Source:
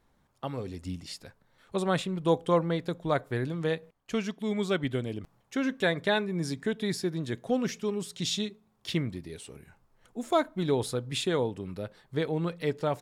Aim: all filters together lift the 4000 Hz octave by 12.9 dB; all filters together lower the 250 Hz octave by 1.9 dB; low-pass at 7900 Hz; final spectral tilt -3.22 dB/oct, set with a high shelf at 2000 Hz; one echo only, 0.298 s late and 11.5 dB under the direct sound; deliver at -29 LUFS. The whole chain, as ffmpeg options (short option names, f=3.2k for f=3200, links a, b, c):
-af "lowpass=7.9k,equalizer=f=250:t=o:g=-3,highshelf=f=2k:g=8,equalizer=f=4k:t=o:g=8,aecho=1:1:298:0.266,volume=-2.5dB"